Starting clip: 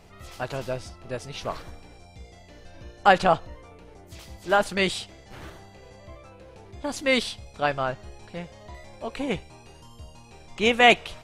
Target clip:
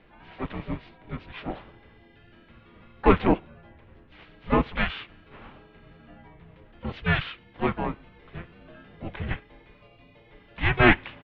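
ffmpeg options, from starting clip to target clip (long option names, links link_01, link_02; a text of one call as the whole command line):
ffmpeg -i in.wav -filter_complex "[0:a]asplit=4[link_01][link_02][link_03][link_04];[link_02]asetrate=22050,aresample=44100,atempo=2,volume=-6dB[link_05];[link_03]asetrate=37084,aresample=44100,atempo=1.18921,volume=-4dB[link_06];[link_04]asetrate=66075,aresample=44100,atempo=0.66742,volume=-11dB[link_07];[link_01][link_05][link_06][link_07]amix=inputs=4:normalize=0,highpass=frequency=250:width_type=q:width=0.5412,highpass=frequency=250:width_type=q:width=1.307,lowpass=frequency=3600:width_type=q:width=0.5176,lowpass=frequency=3600:width_type=q:width=0.7071,lowpass=frequency=3600:width_type=q:width=1.932,afreqshift=-360,volume=-3dB" out.wav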